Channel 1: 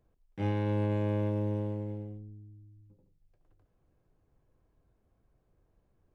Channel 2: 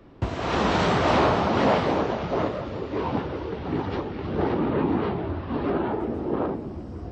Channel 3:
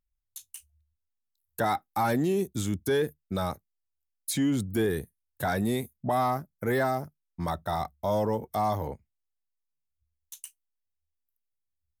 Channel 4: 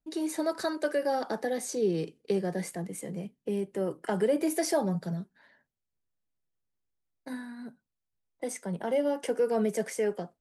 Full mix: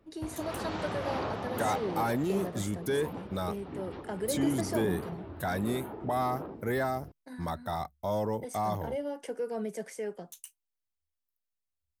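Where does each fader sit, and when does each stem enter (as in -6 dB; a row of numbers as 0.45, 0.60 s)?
-17.5, -14.5, -4.0, -7.5 dB; 0.00, 0.00, 0.00, 0.00 s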